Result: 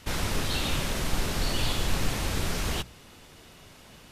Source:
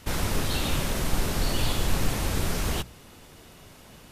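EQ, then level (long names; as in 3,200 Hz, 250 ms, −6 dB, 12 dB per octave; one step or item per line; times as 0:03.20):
low-pass filter 3,400 Hz 6 dB per octave
high-shelf EQ 2,200 Hz +9 dB
−2.5 dB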